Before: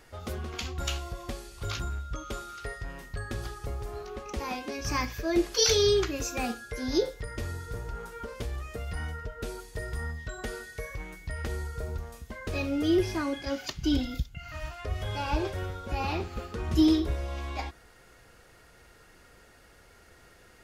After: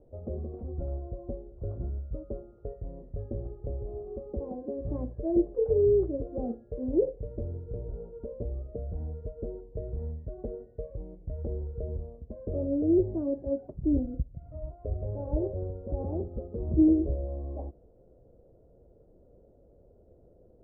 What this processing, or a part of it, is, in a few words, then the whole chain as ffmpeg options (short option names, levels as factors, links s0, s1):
under water: -af "lowpass=f=510:w=0.5412,lowpass=f=510:w=1.3066,equalizer=f=590:t=o:w=0.55:g=9.5"